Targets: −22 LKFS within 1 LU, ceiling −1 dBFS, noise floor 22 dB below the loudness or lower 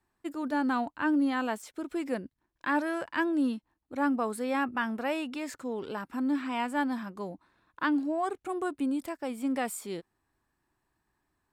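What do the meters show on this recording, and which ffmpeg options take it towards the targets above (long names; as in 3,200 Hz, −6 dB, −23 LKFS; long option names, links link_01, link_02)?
integrated loudness −31.5 LKFS; sample peak −16.5 dBFS; target loudness −22.0 LKFS
→ -af "volume=9.5dB"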